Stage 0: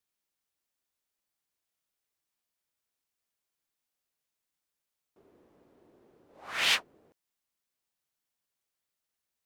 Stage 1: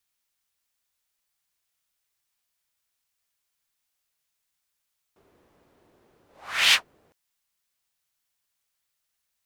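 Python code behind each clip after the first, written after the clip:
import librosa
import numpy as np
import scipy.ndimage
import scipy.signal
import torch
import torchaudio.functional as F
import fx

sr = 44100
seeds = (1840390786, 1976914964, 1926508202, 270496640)

y = fx.peak_eq(x, sr, hz=320.0, db=-9.5, octaves=2.5)
y = F.gain(torch.from_numpy(y), 7.5).numpy()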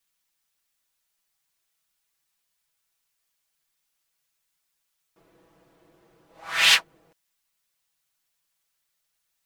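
y = x + 0.82 * np.pad(x, (int(6.1 * sr / 1000.0), 0))[:len(x)]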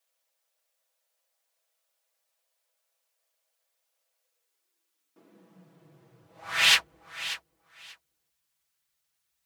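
y = fx.filter_sweep_highpass(x, sr, from_hz=560.0, to_hz=63.0, start_s=4.17, end_s=6.91, q=7.5)
y = fx.echo_feedback(y, sr, ms=587, feedback_pct=18, wet_db=-14.0)
y = F.gain(torch.from_numpy(y), -2.5).numpy()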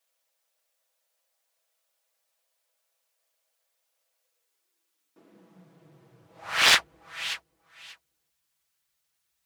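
y = fx.doppler_dist(x, sr, depth_ms=0.99)
y = F.gain(torch.from_numpy(y), 1.5).numpy()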